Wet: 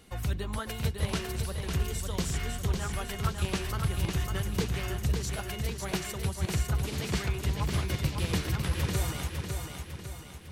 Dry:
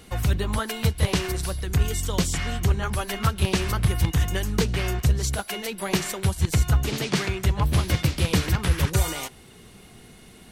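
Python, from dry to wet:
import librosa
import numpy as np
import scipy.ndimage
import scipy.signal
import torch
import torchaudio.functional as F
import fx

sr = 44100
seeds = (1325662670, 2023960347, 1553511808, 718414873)

y = fx.echo_feedback(x, sr, ms=552, feedback_pct=48, wet_db=-5.0)
y = F.gain(torch.from_numpy(y), -8.5).numpy()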